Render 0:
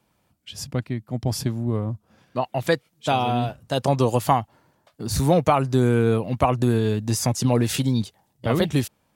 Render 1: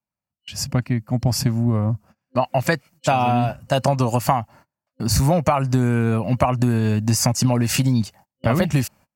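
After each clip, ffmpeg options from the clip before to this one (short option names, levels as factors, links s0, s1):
-af "agate=range=0.0282:threshold=0.00398:ratio=16:detection=peak,superequalizer=6b=0.562:7b=0.398:13b=0.355:16b=0.708,acompressor=threshold=0.0794:ratio=6,volume=2.51"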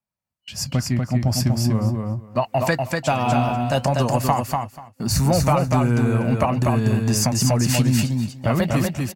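-filter_complex "[0:a]asplit=2[s0][s1];[s1]asoftclip=type=tanh:threshold=0.237,volume=0.501[s2];[s0][s2]amix=inputs=2:normalize=0,flanger=delay=1.6:depth=7.6:regen=-72:speed=0.44:shape=sinusoidal,aecho=1:1:243|486|729:0.668|0.107|0.0171"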